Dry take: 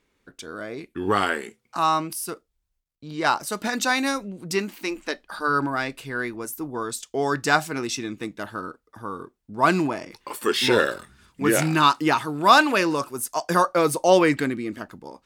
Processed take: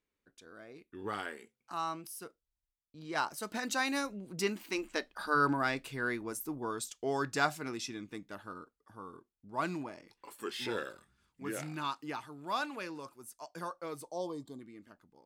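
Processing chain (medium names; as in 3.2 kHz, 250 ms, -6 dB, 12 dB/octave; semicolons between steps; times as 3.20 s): Doppler pass-by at 5.55 s, 10 m/s, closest 13 m; time-frequency box 14.08–14.61 s, 1.2–3.1 kHz -24 dB; trim -5.5 dB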